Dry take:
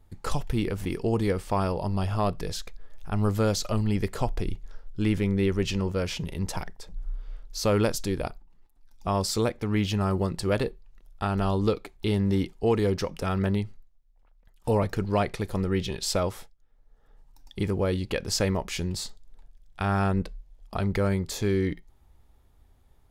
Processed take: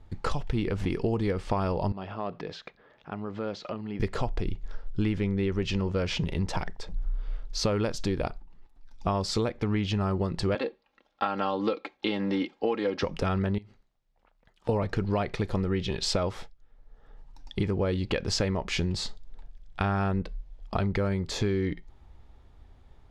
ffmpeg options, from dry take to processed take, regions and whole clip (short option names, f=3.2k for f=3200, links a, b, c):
-filter_complex "[0:a]asettb=1/sr,asplit=3[a][b][c];[a]atrim=end=1.924[d];[b]atrim=start=1.92:end=4,asetpts=PTS-STARTPTS,afade=t=in:d=0.004:c=qsin,afade=t=out:st=2.076:d=0.004:c=qsin,acompressor=threshold=-34dB:ratio=5:attack=3.2:release=140:knee=1:detection=peak,highpass=200,lowpass=3.2k[e];[c]atrim=start=3.996[f];[d][e]acrossfade=d=0.004:c1=hsin:c2=qsin[g];[g][f]acrossfade=d=0.004:c1=qsin:c2=hsin,asettb=1/sr,asplit=3[h][i][j];[h]atrim=end=10.554[k];[i]atrim=start=10.55:end=13.03,asetpts=PTS-STARTPTS,afade=t=in:d=0.004:c=qsin,afade=t=out:st=2.476:d=0.004:c=qsin,highpass=340,lowpass=4.6k,aecho=1:1:3.7:0.62,atrim=end_sample=109368[l];[j]atrim=start=13.026[m];[k][l]acrossfade=d=0.004:c1=hsin:c2=qsin[n];[n][m]acrossfade=d=0.004:c1=qsin:c2=hsin,asettb=1/sr,asplit=3[o][p][q];[o]atrim=end=13.584[r];[p]atrim=start=13.58:end=14.69,asetpts=PTS-STARTPTS,afade=t=in:d=0.004:c=qsin,afade=t=out:st=1.106:d=0.004:c=qsin,highpass=f=180:p=1,acompressor=threshold=-42dB:ratio=16:attack=3.2:release=140:knee=1:detection=peak[s];[q]atrim=start=14.686[t];[r][s]acrossfade=d=0.004:c1=hsin:c2=qsin[u];[u][t]acrossfade=d=0.004:c1=qsin:c2=hsin,lowpass=4.7k,acompressor=threshold=-30dB:ratio=6,volume=6dB"